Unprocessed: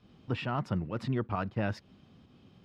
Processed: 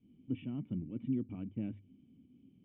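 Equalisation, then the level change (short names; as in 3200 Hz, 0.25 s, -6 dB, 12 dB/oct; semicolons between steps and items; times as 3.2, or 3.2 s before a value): vocal tract filter i; air absorption 290 m; notches 50/100 Hz; +3.0 dB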